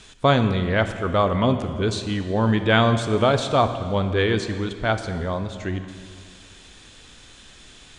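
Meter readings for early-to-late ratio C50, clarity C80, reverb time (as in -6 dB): 9.5 dB, 10.5 dB, 2.2 s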